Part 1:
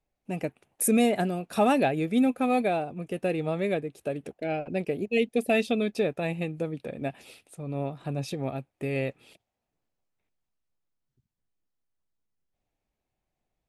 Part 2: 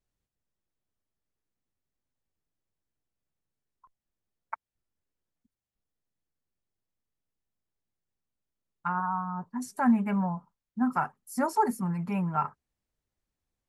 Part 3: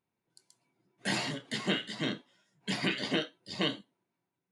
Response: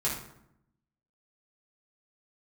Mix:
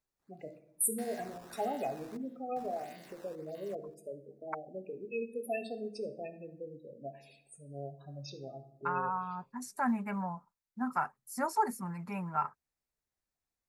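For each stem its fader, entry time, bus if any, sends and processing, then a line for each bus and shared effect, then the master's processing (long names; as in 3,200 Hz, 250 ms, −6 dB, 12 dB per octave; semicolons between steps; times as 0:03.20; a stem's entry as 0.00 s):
−10.0 dB, 0.00 s, send −9.5 dB, gate on every frequency bin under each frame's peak −10 dB strong; bass and treble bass −6 dB, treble +7 dB
−2.0 dB, 0.00 s, no send, no processing
−6.5 dB, 0.00 s, no send, spectrum averaged block by block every 200 ms; brickwall limiter −33.5 dBFS, peak gain reduction 11 dB; sample-and-hold swept by an LFO 12×, swing 160% 1.6 Hz; automatic ducking −7 dB, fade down 1.60 s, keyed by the second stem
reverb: on, RT60 0.75 s, pre-delay 3 ms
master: parametric band 3,100 Hz −9.5 dB 0.25 octaves; floating-point word with a short mantissa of 8 bits; low-shelf EQ 450 Hz −9 dB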